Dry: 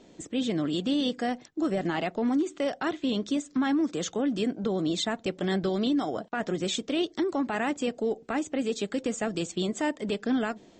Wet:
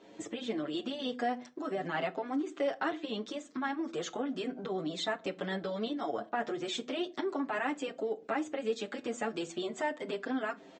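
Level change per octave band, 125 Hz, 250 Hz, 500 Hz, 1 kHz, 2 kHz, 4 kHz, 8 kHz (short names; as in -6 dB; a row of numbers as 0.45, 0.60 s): -11.5, -9.5, -4.5, -2.0, -2.5, -6.5, -9.5 dB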